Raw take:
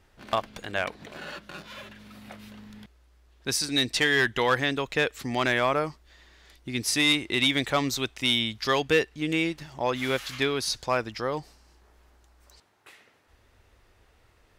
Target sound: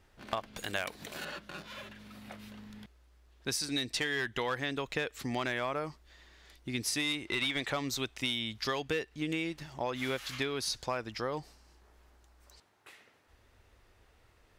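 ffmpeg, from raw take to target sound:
ffmpeg -i in.wav -filter_complex "[0:a]asettb=1/sr,asplit=3[link_01][link_02][link_03];[link_01]atrim=end=0.574[link_04];[link_02]atrim=start=0.57:end=1.25,asetpts=PTS-STARTPTS,afade=type=in:duration=0.004:curve=qsin,afade=type=out:start_time=0.676:duration=0.004:curve=qsin,aemphasis=mode=production:type=75kf[link_05];[link_03]atrim=start=1.246[link_06];[link_04][link_05]acrossfade=duration=0.004:curve1=hsin:curve2=qsin[link_07];[link_07][link_06]acrossfade=duration=0.004:curve1=qsin:curve2=hsin,acompressor=threshold=-27dB:ratio=6,asettb=1/sr,asplit=3[link_08][link_09][link_10];[link_08]atrim=end=7.274[link_11];[link_09]atrim=start=7.27:end=7.72,asetpts=PTS-STARTPTS,afade=type=in:duration=0.004:curve=qsin,afade=type=out:start_time=0.446:duration=0.004:curve=qsin,asplit=2[link_12][link_13];[link_13]highpass=frequency=720:poles=1,volume=12dB,asoftclip=type=tanh:threshold=-19dB[link_14];[link_12][link_14]amix=inputs=2:normalize=0,lowpass=frequency=3300:poles=1,volume=-6dB[link_15];[link_10]atrim=start=7.716[link_16];[link_11][link_15]acrossfade=duration=0.004:curve1=hsin:curve2=qsin[link_17];[link_17][link_16]acrossfade=duration=0.004:curve1=qsin:curve2=hsin,volume=-3dB" out.wav

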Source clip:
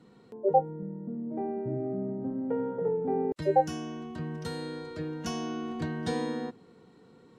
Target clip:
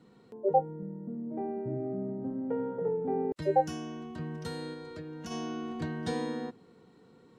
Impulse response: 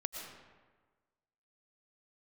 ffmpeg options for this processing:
-filter_complex "[0:a]asplit=3[link_01][link_02][link_03];[link_01]afade=type=out:start_time=4.73:duration=0.02[link_04];[link_02]acompressor=threshold=-37dB:ratio=6,afade=type=in:start_time=4.73:duration=0.02,afade=type=out:start_time=5.3:duration=0.02[link_05];[link_03]afade=type=in:start_time=5.3:duration=0.02[link_06];[link_04][link_05][link_06]amix=inputs=3:normalize=0,volume=-2dB"

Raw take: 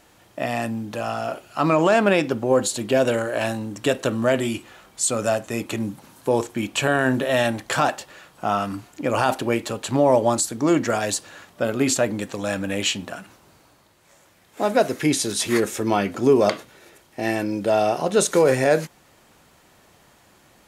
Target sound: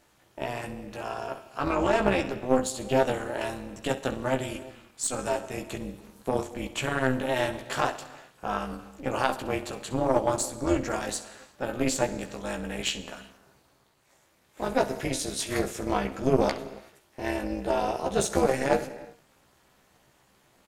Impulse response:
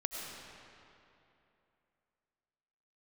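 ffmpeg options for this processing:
-filter_complex "[0:a]aecho=1:1:15|66:0.631|0.224,asplit=2[link_01][link_02];[1:a]atrim=start_sample=2205,afade=type=out:start_time=0.43:duration=0.01,atrim=end_sample=19404[link_03];[link_02][link_03]afir=irnorm=-1:irlink=0,volume=-11dB[link_04];[link_01][link_04]amix=inputs=2:normalize=0,tremolo=f=260:d=0.857,aeval=exprs='0.891*(cos(1*acos(clip(val(0)/0.891,-1,1)))-cos(1*PI/2))+0.141*(cos(2*acos(clip(val(0)/0.891,-1,1)))-cos(2*PI/2))+0.0398*(cos(3*acos(clip(val(0)/0.891,-1,1)))-cos(3*PI/2))+0.02*(cos(7*acos(clip(val(0)/0.891,-1,1)))-cos(7*PI/2))':channel_layout=same,volume=-5dB"

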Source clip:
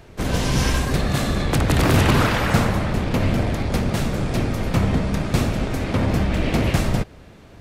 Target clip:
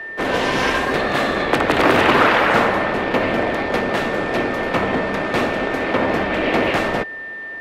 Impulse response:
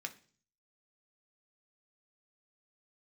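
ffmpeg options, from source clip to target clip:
-filter_complex "[0:a]acontrast=48,aeval=exprs='val(0)+0.0282*sin(2*PI*1800*n/s)':channel_layout=same,acrossover=split=290 3400:gain=0.0708 1 0.141[link_01][link_02][link_03];[link_01][link_02][link_03]amix=inputs=3:normalize=0,volume=3dB"

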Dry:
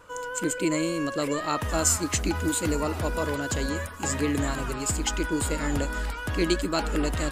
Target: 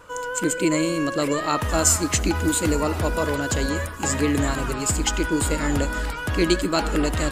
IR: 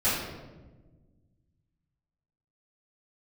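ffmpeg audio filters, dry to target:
-filter_complex "[0:a]asplit=2[link_01][link_02];[1:a]atrim=start_sample=2205,adelay=64[link_03];[link_02][link_03]afir=irnorm=-1:irlink=0,volume=-32dB[link_04];[link_01][link_04]amix=inputs=2:normalize=0,volume=4.5dB"

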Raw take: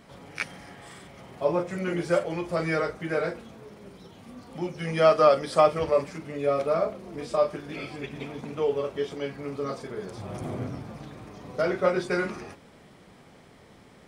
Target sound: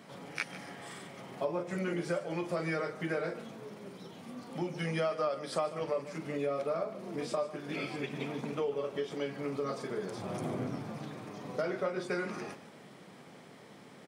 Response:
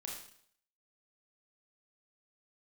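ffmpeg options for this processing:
-filter_complex "[0:a]highpass=frequency=130:width=0.5412,highpass=frequency=130:width=1.3066,acompressor=threshold=-31dB:ratio=5,asplit=2[link_01][link_02];[link_02]aecho=0:1:148:0.168[link_03];[link_01][link_03]amix=inputs=2:normalize=0"

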